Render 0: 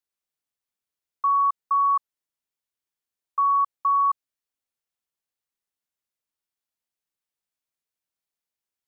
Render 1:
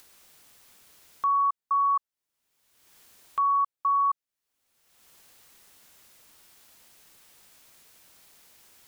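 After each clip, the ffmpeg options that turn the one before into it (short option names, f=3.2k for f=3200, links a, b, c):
-af "acompressor=mode=upward:threshold=-26dB:ratio=2.5,volume=-3dB"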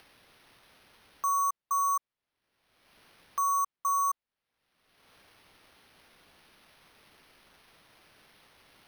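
-af "acrusher=samples=6:mix=1:aa=0.000001,volume=-4dB"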